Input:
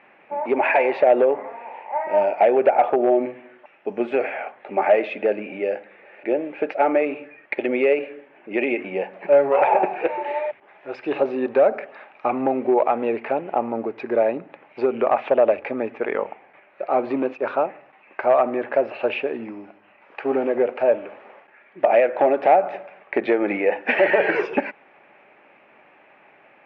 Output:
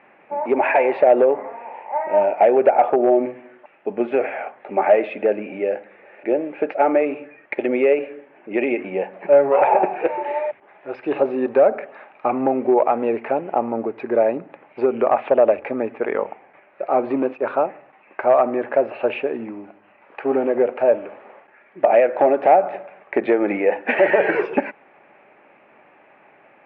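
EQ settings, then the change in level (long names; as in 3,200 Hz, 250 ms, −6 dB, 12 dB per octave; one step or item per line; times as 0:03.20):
low-pass filter 2,300 Hz 6 dB per octave
high-frequency loss of the air 76 metres
+2.5 dB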